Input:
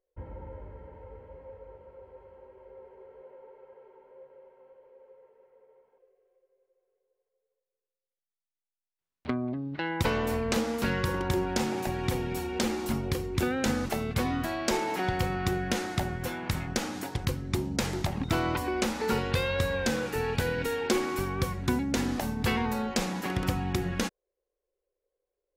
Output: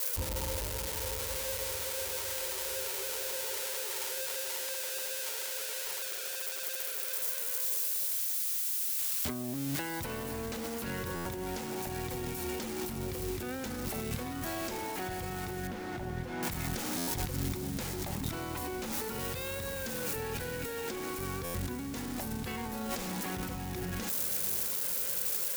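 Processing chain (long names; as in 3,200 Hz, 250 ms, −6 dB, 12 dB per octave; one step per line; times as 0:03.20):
spike at every zero crossing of −26 dBFS
0:18.92–0:20.17: high-shelf EQ 7,000 Hz +7.5 dB
brickwall limiter −22.5 dBFS, peak gain reduction 11 dB
compressor whose output falls as the input rises −37 dBFS, ratio −1
0:15.67–0:16.43: head-to-tape spacing loss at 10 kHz 26 dB
feedback delay with all-pass diffusion 575 ms, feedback 54%, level −14 dB
buffer that repeats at 0:11.15/0:16.97/0:21.44, samples 512, times 8
level +1.5 dB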